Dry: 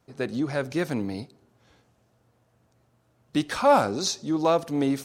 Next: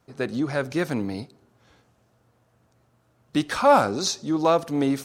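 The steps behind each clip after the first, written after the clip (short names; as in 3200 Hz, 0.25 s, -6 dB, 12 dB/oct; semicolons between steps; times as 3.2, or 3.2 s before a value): bell 1300 Hz +2.5 dB; gain +1.5 dB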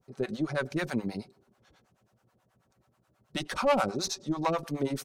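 tube stage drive 15 dB, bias 0.35; comb 5.3 ms, depth 35%; harmonic tremolo 9.3 Hz, depth 100%, crossover 570 Hz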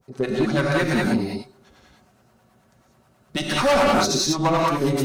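non-linear reverb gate 0.22 s rising, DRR -3 dB; overloaded stage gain 21.5 dB; gain +7.5 dB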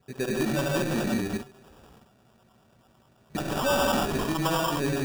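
in parallel at +1 dB: level quantiser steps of 14 dB; on the sum: limiter -16 dBFS, peak gain reduction 6.5 dB; sample-and-hold 21×; gain -4.5 dB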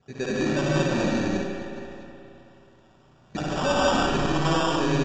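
on a send: reverse bouncing-ball echo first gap 60 ms, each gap 1.4×, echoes 5; on the sum: spring tank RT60 3 s, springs 33/53 ms, chirp 80 ms, DRR 5 dB; AAC 64 kbps 16000 Hz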